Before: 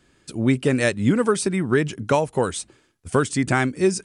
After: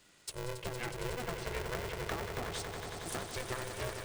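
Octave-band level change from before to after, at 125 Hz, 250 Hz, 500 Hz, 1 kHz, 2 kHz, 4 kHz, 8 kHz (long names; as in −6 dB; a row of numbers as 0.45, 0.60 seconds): −17.5, −25.0, −18.5, −14.5, −15.0, −9.0, −13.5 decibels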